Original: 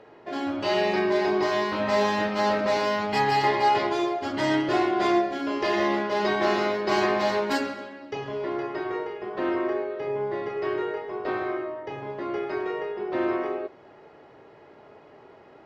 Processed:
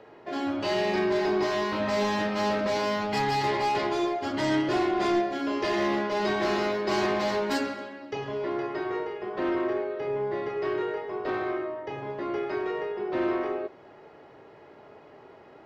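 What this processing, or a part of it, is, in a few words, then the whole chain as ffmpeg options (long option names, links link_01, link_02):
one-band saturation: -filter_complex "[0:a]acrossover=split=350|4600[link_01][link_02][link_03];[link_02]asoftclip=type=tanh:threshold=-24.5dB[link_04];[link_01][link_04][link_03]amix=inputs=3:normalize=0"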